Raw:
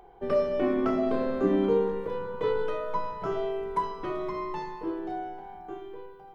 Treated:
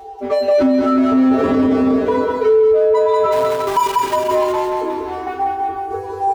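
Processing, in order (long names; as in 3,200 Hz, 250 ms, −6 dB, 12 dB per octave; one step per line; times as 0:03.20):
0:01.30–0:02.06: sub-harmonics by changed cycles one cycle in 2, muted
gate on every frequency bin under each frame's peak −10 dB strong
0:04.97–0:05.76: low-shelf EQ 150 Hz +10 dB
leveller curve on the samples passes 1
gate pattern "...x...xxx" 94 BPM −12 dB
power curve on the samples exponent 0.7
tuned comb filter 88 Hz, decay 0.31 s, harmonics odd, mix 100%
0:03.32–0:04.16: centre clipping without the shift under −49.5 dBFS
high-pass filter 46 Hz
on a send: bouncing-ball delay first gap 190 ms, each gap 0.9×, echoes 5
on the sum: boost into a limiter +35 dB
level −6.5 dB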